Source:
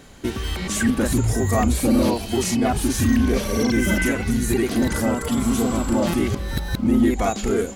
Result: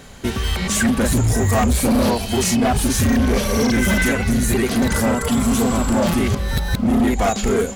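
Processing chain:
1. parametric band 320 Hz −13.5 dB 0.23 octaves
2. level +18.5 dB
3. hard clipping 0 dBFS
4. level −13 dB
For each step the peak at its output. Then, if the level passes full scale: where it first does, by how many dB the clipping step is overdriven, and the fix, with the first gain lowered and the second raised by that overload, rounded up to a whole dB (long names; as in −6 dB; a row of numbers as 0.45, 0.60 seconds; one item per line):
−9.5, +9.0, 0.0, −13.0 dBFS
step 2, 9.0 dB
step 2 +9.5 dB, step 4 −4 dB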